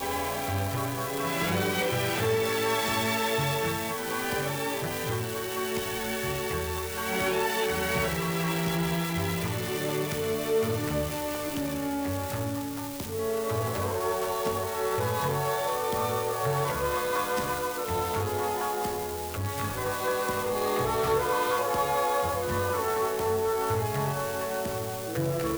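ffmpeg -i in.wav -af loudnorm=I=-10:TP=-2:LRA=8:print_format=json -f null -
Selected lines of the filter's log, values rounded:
"input_i" : "-28.7",
"input_tp" : "-15.1",
"input_lra" : "3.1",
"input_thresh" : "-38.7",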